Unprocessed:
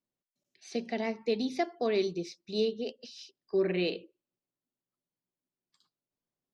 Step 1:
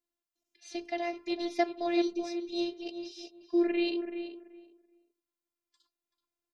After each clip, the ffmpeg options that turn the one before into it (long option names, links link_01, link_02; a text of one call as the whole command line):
ffmpeg -i in.wav -filter_complex "[0:a]afftfilt=real='hypot(re,im)*cos(PI*b)':imag='0':win_size=512:overlap=0.75,asplit=2[link_01][link_02];[link_02]adelay=381,lowpass=frequency=1800:poles=1,volume=-8dB,asplit=2[link_03][link_04];[link_04]adelay=381,lowpass=frequency=1800:poles=1,volume=0.19,asplit=2[link_05][link_06];[link_06]adelay=381,lowpass=frequency=1800:poles=1,volume=0.19[link_07];[link_01][link_03][link_05][link_07]amix=inputs=4:normalize=0,volume=3dB" out.wav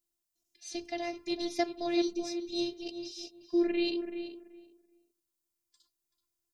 ffmpeg -i in.wav -af "bass=frequency=250:gain=11,treble=frequency=4000:gain=12,volume=-3.5dB" out.wav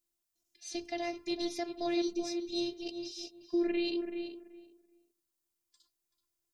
ffmpeg -i in.wav -af "alimiter=limit=-23.5dB:level=0:latency=1:release=76" out.wav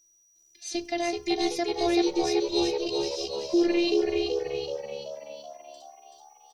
ffmpeg -i in.wav -filter_complex "[0:a]aeval=exprs='val(0)+0.000398*sin(2*PI*5800*n/s)':channel_layout=same,asplit=2[link_01][link_02];[link_02]asplit=7[link_03][link_04][link_05][link_06][link_07][link_08][link_09];[link_03]adelay=380,afreqshift=72,volume=-5dB[link_10];[link_04]adelay=760,afreqshift=144,volume=-10dB[link_11];[link_05]adelay=1140,afreqshift=216,volume=-15.1dB[link_12];[link_06]adelay=1520,afreqshift=288,volume=-20.1dB[link_13];[link_07]adelay=1900,afreqshift=360,volume=-25.1dB[link_14];[link_08]adelay=2280,afreqshift=432,volume=-30.2dB[link_15];[link_09]adelay=2660,afreqshift=504,volume=-35.2dB[link_16];[link_10][link_11][link_12][link_13][link_14][link_15][link_16]amix=inputs=7:normalize=0[link_17];[link_01][link_17]amix=inputs=2:normalize=0,volume=7.5dB" out.wav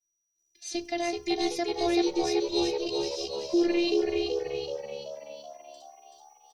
ffmpeg -i in.wav -af "agate=range=-33dB:threshold=-53dB:ratio=3:detection=peak,volume=-1.5dB" out.wav